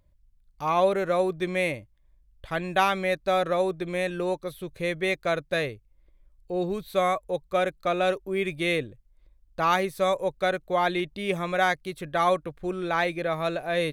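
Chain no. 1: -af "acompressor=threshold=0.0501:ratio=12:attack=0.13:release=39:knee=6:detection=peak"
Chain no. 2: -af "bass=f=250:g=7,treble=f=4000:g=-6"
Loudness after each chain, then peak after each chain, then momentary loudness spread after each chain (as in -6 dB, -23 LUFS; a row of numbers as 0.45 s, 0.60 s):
-34.0 LUFS, -26.0 LUFS; -24.5 dBFS, -10.0 dBFS; 5 LU, 7 LU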